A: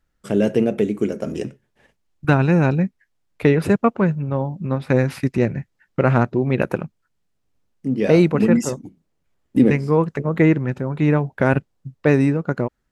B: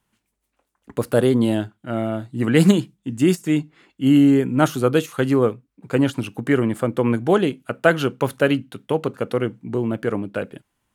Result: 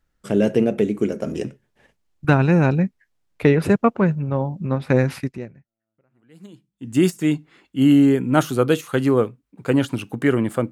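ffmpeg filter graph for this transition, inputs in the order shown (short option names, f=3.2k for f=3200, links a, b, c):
-filter_complex "[0:a]apad=whole_dur=10.71,atrim=end=10.71,atrim=end=6.96,asetpts=PTS-STARTPTS[a];[1:a]atrim=start=1.41:end=6.96,asetpts=PTS-STARTPTS[b];[a][b]acrossfade=d=1.8:c1=exp:c2=exp"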